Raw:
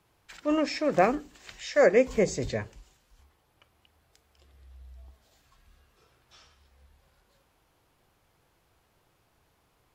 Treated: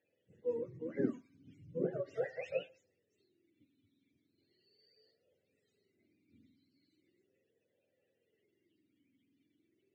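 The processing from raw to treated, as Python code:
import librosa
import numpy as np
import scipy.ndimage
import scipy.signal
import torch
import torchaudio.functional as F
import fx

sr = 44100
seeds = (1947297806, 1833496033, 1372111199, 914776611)

y = fx.octave_mirror(x, sr, pivot_hz=540.0)
y = fx.vowel_sweep(y, sr, vowels='e-i', hz=0.38)
y = y * librosa.db_to_amplitude(4.0)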